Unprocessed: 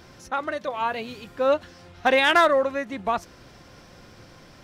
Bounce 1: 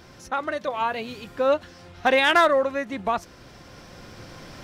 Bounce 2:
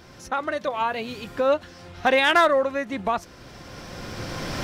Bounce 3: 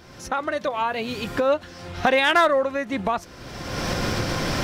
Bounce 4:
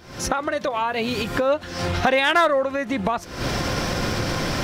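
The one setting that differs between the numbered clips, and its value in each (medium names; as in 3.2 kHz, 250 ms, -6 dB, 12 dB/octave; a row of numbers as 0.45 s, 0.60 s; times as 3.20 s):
recorder AGC, rising by: 5.2 dB/s, 14 dB/s, 33 dB/s, 84 dB/s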